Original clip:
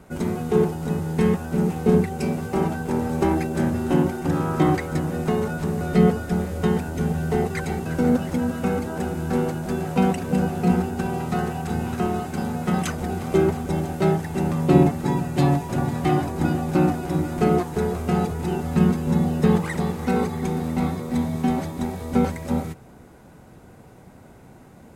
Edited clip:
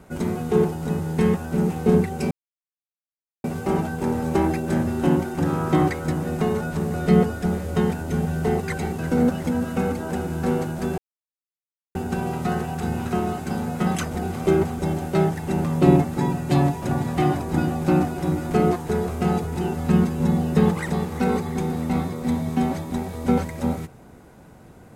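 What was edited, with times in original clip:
0:02.31: splice in silence 1.13 s
0:09.85–0:10.82: silence

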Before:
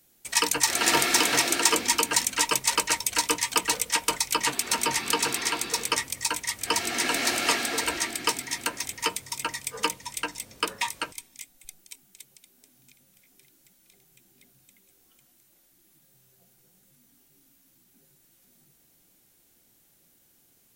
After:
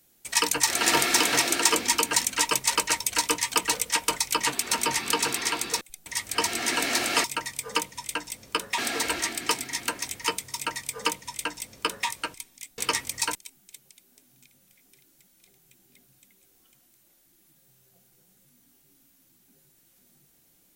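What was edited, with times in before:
0:05.81–0:06.38: swap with 0:11.56–0:11.81
0:09.32–0:10.86: duplicate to 0:07.56

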